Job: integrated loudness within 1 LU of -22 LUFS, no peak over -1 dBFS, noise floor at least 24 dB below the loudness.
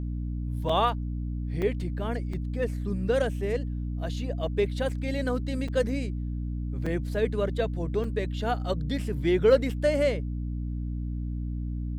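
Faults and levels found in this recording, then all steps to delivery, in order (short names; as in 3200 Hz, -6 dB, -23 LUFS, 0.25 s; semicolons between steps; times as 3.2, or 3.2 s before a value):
dropouts 7; longest dropout 4.4 ms; hum 60 Hz; harmonics up to 300 Hz; hum level -29 dBFS; loudness -29.0 LUFS; peak -9.5 dBFS; loudness target -22.0 LUFS
-> interpolate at 0.69/1.62/2.33/4.89/5.68/6.86/8.04, 4.4 ms; notches 60/120/180/240/300 Hz; gain +7 dB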